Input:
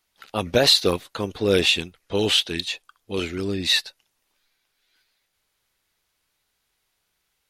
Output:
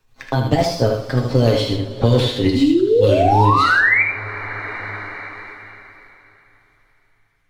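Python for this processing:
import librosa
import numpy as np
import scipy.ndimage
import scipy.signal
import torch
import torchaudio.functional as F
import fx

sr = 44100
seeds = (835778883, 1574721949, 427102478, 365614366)

p1 = fx.pitch_glide(x, sr, semitones=3.0, runs='ending unshifted')
p2 = fx.doppler_pass(p1, sr, speed_mps=18, closest_m=16.0, pass_at_s=2.62)
p3 = fx.tilt_eq(p2, sr, slope=-3.5)
p4 = fx.notch(p3, sr, hz=4800.0, q=19.0)
p5 = p4 + 0.72 * np.pad(p4, (int(7.4 * sr / 1000.0), 0))[:len(p4)]
p6 = fx.leveller(p5, sr, passes=1)
p7 = fx.level_steps(p6, sr, step_db=19)
p8 = p6 + F.gain(torch.from_numpy(p7), -2.0).numpy()
p9 = fx.spec_paint(p8, sr, seeds[0], shape='rise', start_s=2.55, length_s=1.48, low_hz=250.0, high_hz=2400.0, level_db=-13.0)
p10 = p9 + fx.echo_single(p9, sr, ms=77, db=-5.5, dry=0)
p11 = fx.rev_double_slope(p10, sr, seeds[1], early_s=0.43, late_s=3.4, knee_db=-22, drr_db=4.0)
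p12 = fx.band_squash(p11, sr, depth_pct=70)
y = F.gain(torch.from_numpy(p12), -3.5).numpy()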